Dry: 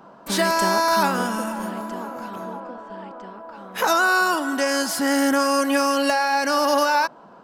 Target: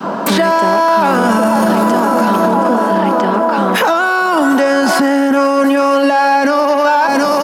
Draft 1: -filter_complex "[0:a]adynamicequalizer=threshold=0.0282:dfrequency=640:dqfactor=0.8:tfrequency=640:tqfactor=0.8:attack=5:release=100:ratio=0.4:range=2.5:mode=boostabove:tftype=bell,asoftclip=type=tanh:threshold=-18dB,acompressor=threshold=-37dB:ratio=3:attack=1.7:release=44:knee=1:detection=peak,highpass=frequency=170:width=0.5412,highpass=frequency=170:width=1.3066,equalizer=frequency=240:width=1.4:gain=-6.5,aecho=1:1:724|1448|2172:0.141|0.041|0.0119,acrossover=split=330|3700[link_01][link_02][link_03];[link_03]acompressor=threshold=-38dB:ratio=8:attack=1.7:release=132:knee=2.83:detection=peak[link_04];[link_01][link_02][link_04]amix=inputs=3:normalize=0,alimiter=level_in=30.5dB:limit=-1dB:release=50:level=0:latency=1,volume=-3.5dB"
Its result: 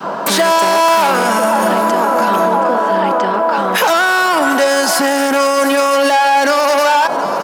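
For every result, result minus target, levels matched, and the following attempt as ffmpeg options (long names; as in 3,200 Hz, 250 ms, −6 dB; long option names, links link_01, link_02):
downward compressor: peak gain reduction +12.5 dB; soft clipping: distortion +9 dB; 250 Hz band −6.0 dB
-filter_complex "[0:a]adynamicequalizer=threshold=0.0282:dfrequency=640:dqfactor=0.8:tfrequency=640:tqfactor=0.8:attack=5:release=100:ratio=0.4:range=2.5:mode=boostabove:tftype=bell,asoftclip=type=tanh:threshold=-18dB,highpass=frequency=170:width=0.5412,highpass=frequency=170:width=1.3066,equalizer=frequency=240:width=1.4:gain=-6.5,aecho=1:1:724|1448|2172:0.141|0.041|0.0119,acrossover=split=330|3700[link_01][link_02][link_03];[link_03]acompressor=threshold=-38dB:ratio=8:attack=1.7:release=132:knee=2.83:detection=peak[link_04];[link_01][link_02][link_04]amix=inputs=3:normalize=0,alimiter=level_in=30.5dB:limit=-1dB:release=50:level=0:latency=1,volume=-3.5dB"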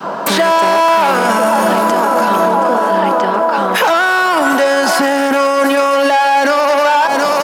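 soft clipping: distortion +9 dB; 250 Hz band −5.5 dB
-filter_complex "[0:a]adynamicequalizer=threshold=0.0282:dfrequency=640:dqfactor=0.8:tfrequency=640:tqfactor=0.8:attack=5:release=100:ratio=0.4:range=2.5:mode=boostabove:tftype=bell,asoftclip=type=tanh:threshold=-9.5dB,highpass=frequency=170:width=0.5412,highpass=frequency=170:width=1.3066,equalizer=frequency=240:width=1.4:gain=-6.5,aecho=1:1:724|1448|2172:0.141|0.041|0.0119,acrossover=split=330|3700[link_01][link_02][link_03];[link_03]acompressor=threshold=-38dB:ratio=8:attack=1.7:release=132:knee=2.83:detection=peak[link_04];[link_01][link_02][link_04]amix=inputs=3:normalize=0,alimiter=level_in=30.5dB:limit=-1dB:release=50:level=0:latency=1,volume=-3.5dB"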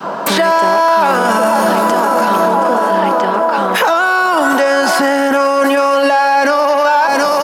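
250 Hz band −5.5 dB
-filter_complex "[0:a]adynamicequalizer=threshold=0.0282:dfrequency=640:dqfactor=0.8:tfrequency=640:tqfactor=0.8:attack=5:release=100:ratio=0.4:range=2.5:mode=boostabove:tftype=bell,asoftclip=type=tanh:threshold=-9.5dB,highpass=frequency=170:width=0.5412,highpass=frequency=170:width=1.3066,equalizer=frequency=240:width=1.4:gain=3.5,aecho=1:1:724|1448|2172:0.141|0.041|0.0119,acrossover=split=330|3700[link_01][link_02][link_03];[link_03]acompressor=threshold=-38dB:ratio=8:attack=1.7:release=132:knee=2.83:detection=peak[link_04];[link_01][link_02][link_04]amix=inputs=3:normalize=0,alimiter=level_in=30.5dB:limit=-1dB:release=50:level=0:latency=1,volume=-3.5dB"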